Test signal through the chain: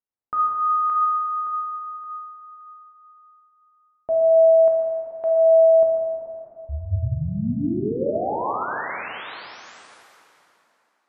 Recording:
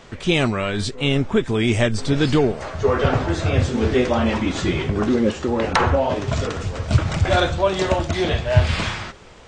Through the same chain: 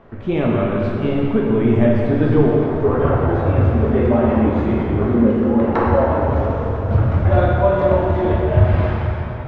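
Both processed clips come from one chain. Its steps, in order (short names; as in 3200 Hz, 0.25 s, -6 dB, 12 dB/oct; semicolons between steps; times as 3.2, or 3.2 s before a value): LPF 1200 Hz 12 dB/oct; plate-style reverb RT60 3.1 s, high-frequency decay 0.8×, DRR -3.5 dB; gain -1.5 dB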